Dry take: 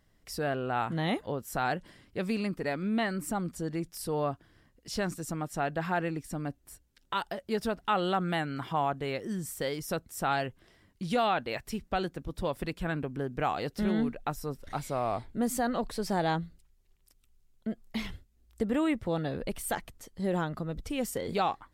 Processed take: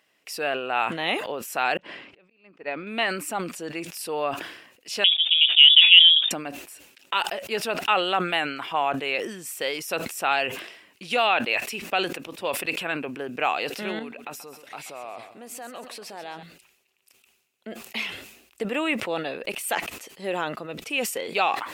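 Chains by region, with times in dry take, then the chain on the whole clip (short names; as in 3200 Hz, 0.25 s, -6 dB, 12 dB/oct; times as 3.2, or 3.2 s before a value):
1.77–2.87 auto swell 0.398 s + tape spacing loss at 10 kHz 26 dB + upward expander 2.5:1, over -42 dBFS
5.04–6.31 EQ curve 120 Hz 0 dB, 540 Hz +11 dB, 1700 Hz -12 dB + inverted band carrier 3600 Hz
13.99–16.43 compressor 4:1, threshold -40 dBFS + feedback echo 0.132 s, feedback 43%, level -13 dB
whole clip: HPF 430 Hz 12 dB/oct; bell 2600 Hz +13.5 dB 0.4 oct; sustainer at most 69 dB/s; gain +5 dB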